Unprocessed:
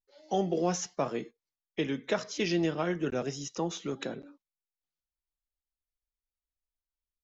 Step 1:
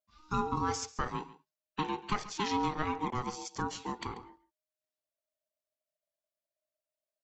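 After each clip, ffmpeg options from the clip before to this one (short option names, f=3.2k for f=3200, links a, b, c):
-af "aeval=exprs='val(0)*sin(2*PI*620*n/s)':c=same,aecho=1:1:138:0.141"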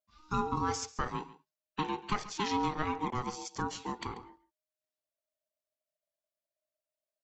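-af anull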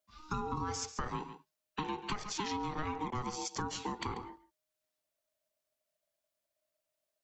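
-filter_complex "[0:a]acrossover=split=130[a][b];[b]acompressor=threshold=-40dB:ratio=1.5[c];[a][c]amix=inputs=2:normalize=0,asplit=2[d][e];[e]alimiter=level_in=7dB:limit=-24dB:level=0:latency=1,volume=-7dB,volume=-0.5dB[f];[d][f]amix=inputs=2:normalize=0,acompressor=threshold=-33dB:ratio=6"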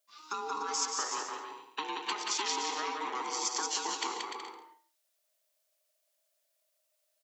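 -af "highpass=f=360:w=0.5412,highpass=f=360:w=1.3066,highshelf=f=2.3k:g=8.5,aecho=1:1:180|297|373|422.5|454.6:0.631|0.398|0.251|0.158|0.1"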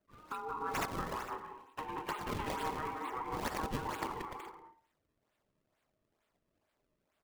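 -filter_complex "[0:a]aphaser=in_gain=1:out_gain=1:delay=3.9:decay=0.39:speed=1.5:type=sinusoidal,acrossover=split=400|2300[a][b][c];[c]acrusher=samples=34:mix=1:aa=0.000001:lfo=1:lforange=54.4:lforate=2.2[d];[a][b][d]amix=inputs=3:normalize=0,volume=-4dB"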